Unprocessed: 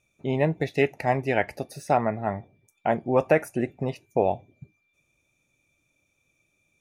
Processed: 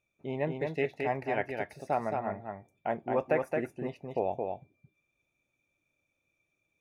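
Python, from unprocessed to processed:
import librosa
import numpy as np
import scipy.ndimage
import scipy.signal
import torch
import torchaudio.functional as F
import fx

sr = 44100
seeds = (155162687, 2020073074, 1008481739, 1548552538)

y = fx.bass_treble(x, sr, bass_db=-4, treble_db=-9)
y = y + 10.0 ** (-4.0 / 20.0) * np.pad(y, (int(220 * sr / 1000.0), 0))[:len(y)]
y = F.gain(torch.from_numpy(y), -8.0).numpy()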